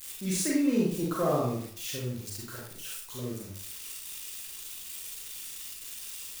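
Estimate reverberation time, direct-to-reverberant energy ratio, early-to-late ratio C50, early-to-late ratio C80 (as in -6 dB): 0.60 s, -4.0 dB, 1.0 dB, 6.5 dB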